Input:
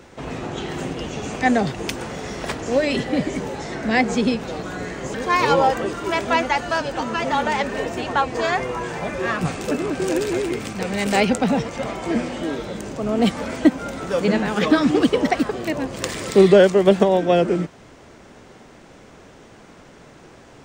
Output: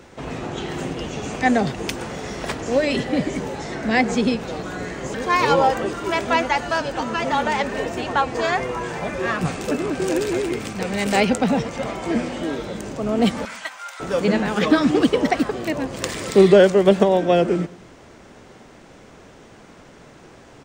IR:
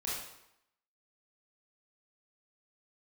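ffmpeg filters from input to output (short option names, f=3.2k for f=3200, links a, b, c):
-filter_complex "[0:a]asettb=1/sr,asplit=3[a][b][c];[a]atrim=end=13.454[d];[b]atrim=start=13.45:end=14,asetpts=PTS-STARTPTS,afade=t=in:d=0.004:c=qsin,afade=t=out:st=0.546:d=0.004:c=qsin,highpass=f=960:w=0.5412,highpass=f=960:w=1.3066[e];[c]atrim=start=13.996[f];[d][e]acrossfade=d=0.004:c1=hsin:c2=qsin[g];[g][f]acrossfade=d=0.004:c1=qsin:c2=hsin,asplit=2[h][i];[i]adelay=106,lowpass=f=2k:p=1,volume=-22dB,asplit=2[j][k];[k]adelay=106,lowpass=f=2k:p=1,volume=0.49,asplit=2[l][m];[m]adelay=106,lowpass=f=2k:p=1,volume=0.49[n];[j][l][n]amix=inputs=3:normalize=0[o];[h][o]amix=inputs=2:normalize=0"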